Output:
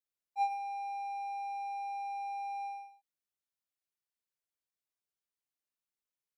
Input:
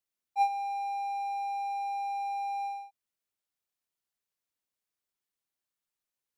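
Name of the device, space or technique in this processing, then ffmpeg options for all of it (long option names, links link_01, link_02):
slapback doubling: -filter_complex "[0:a]asplit=3[link_01][link_02][link_03];[link_02]adelay=15,volume=-6dB[link_04];[link_03]adelay=108,volume=-7.5dB[link_05];[link_01][link_04][link_05]amix=inputs=3:normalize=0,volume=-8.5dB"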